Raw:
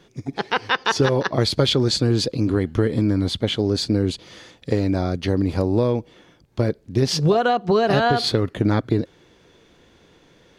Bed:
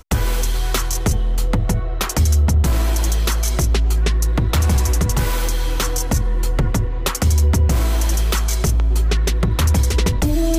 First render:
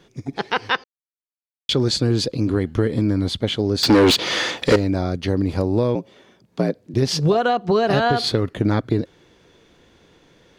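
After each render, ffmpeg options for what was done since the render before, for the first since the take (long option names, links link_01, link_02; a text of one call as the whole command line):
ffmpeg -i in.wav -filter_complex "[0:a]asettb=1/sr,asplit=3[link_01][link_02][link_03];[link_01]atrim=end=3.834[link_04];[link_02]atrim=start=3.83:end=4.76,asetpts=PTS-STARTPTS,afade=type=in:duration=0.004:curve=qsin,afade=type=out:start_time=0.926:duration=0.004:curve=qsin,asplit=2[link_05][link_06];[link_06]highpass=frequency=720:poles=1,volume=31dB,asoftclip=type=tanh:threshold=-4.5dB[link_07];[link_05][link_07]amix=inputs=2:normalize=0,lowpass=frequency=3800:poles=1,volume=-6dB[link_08];[link_03]atrim=start=4.756[link_09];[link_04][link_08]acrossfade=duration=0.004:curve1=hsin:curve2=qsin[link_10];[link_10][link_09]acrossfade=duration=0.004:curve1=qsin:curve2=hsin,asettb=1/sr,asplit=3[link_11][link_12][link_13];[link_11]atrim=end=5.954[link_14];[link_12]atrim=start=5.95:end=6.94,asetpts=PTS-STARTPTS,afade=type=in:duration=0.004:curve=qsin,afade=type=out:start_time=0.986:duration=0.004:curve=qsin,afreqshift=63[link_15];[link_13]atrim=start=6.936[link_16];[link_14][link_15]acrossfade=duration=0.004:curve1=hsin:curve2=qsin[link_17];[link_17][link_16]acrossfade=duration=0.004:curve1=qsin:curve2=hsin,asplit=3[link_18][link_19][link_20];[link_18]atrim=end=0.84,asetpts=PTS-STARTPTS,afade=type=out:start_time=0.836:duration=0.004:curve=hsin[link_21];[link_19]atrim=start=0.84:end=1.69,asetpts=PTS-STARTPTS,volume=0[link_22];[link_20]atrim=start=1.69,asetpts=PTS-STARTPTS,afade=type=in:duration=0.004:curve=hsin[link_23];[link_21][link_22][link_23]concat=n=3:v=0:a=1" out.wav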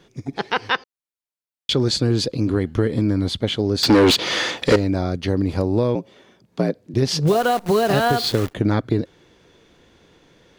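ffmpeg -i in.wav -filter_complex "[0:a]asplit=3[link_01][link_02][link_03];[link_01]afade=type=out:start_time=7.26:duration=0.02[link_04];[link_02]acrusher=bits=6:dc=4:mix=0:aa=0.000001,afade=type=in:start_time=7.26:duration=0.02,afade=type=out:start_time=8.52:duration=0.02[link_05];[link_03]afade=type=in:start_time=8.52:duration=0.02[link_06];[link_04][link_05][link_06]amix=inputs=3:normalize=0" out.wav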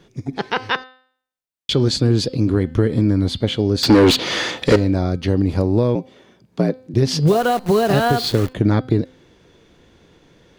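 ffmpeg -i in.wav -af "lowshelf=frequency=340:gain=4.5,bandreject=frequency=257.3:width_type=h:width=4,bandreject=frequency=514.6:width_type=h:width=4,bandreject=frequency=771.9:width_type=h:width=4,bandreject=frequency=1029.2:width_type=h:width=4,bandreject=frequency=1286.5:width_type=h:width=4,bandreject=frequency=1543.8:width_type=h:width=4,bandreject=frequency=1801.1:width_type=h:width=4,bandreject=frequency=2058.4:width_type=h:width=4,bandreject=frequency=2315.7:width_type=h:width=4,bandreject=frequency=2573:width_type=h:width=4,bandreject=frequency=2830.3:width_type=h:width=4,bandreject=frequency=3087.6:width_type=h:width=4,bandreject=frequency=3344.9:width_type=h:width=4,bandreject=frequency=3602.2:width_type=h:width=4,bandreject=frequency=3859.5:width_type=h:width=4,bandreject=frequency=4116.8:width_type=h:width=4,bandreject=frequency=4374.1:width_type=h:width=4,bandreject=frequency=4631.4:width_type=h:width=4,bandreject=frequency=4888.7:width_type=h:width=4,bandreject=frequency=5146:width_type=h:width=4" out.wav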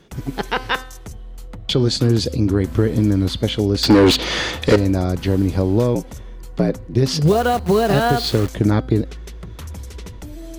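ffmpeg -i in.wav -i bed.wav -filter_complex "[1:a]volume=-17dB[link_01];[0:a][link_01]amix=inputs=2:normalize=0" out.wav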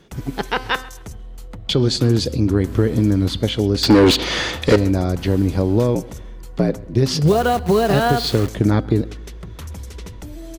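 ffmpeg -i in.wav -filter_complex "[0:a]asplit=2[link_01][link_02];[link_02]adelay=134,lowpass=frequency=3200:poles=1,volume=-21dB,asplit=2[link_03][link_04];[link_04]adelay=134,lowpass=frequency=3200:poles=1,volume=0.35,asplit=2[link_05][link_06];[link_06]adelay=134,lowpass=frequency=3200:poles=1,volume=0.35[link_07];[link_01][link_03][link_05][link_07]amix=inputs=4:normalize=0" out.wav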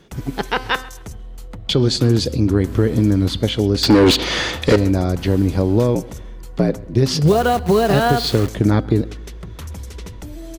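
ffmpeg -i in.wav -af "volume=1dB,alimiter=limit=-3dB:level=0:latency=1" out.wav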